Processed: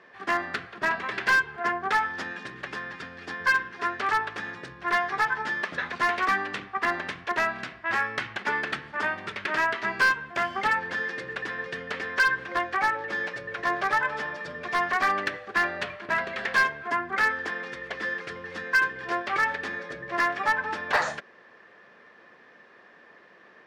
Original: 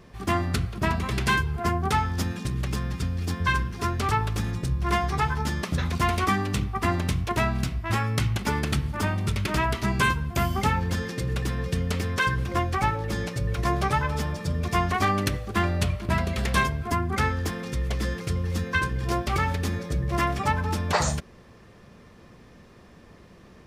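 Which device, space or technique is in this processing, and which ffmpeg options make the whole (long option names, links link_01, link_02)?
megaphone: -af "highpass=460,lowpass=3300,equalizer=frequency=1700:width_type=o:width=0.39:gain=10,asoftclip=type=hard:threshold=-16dB"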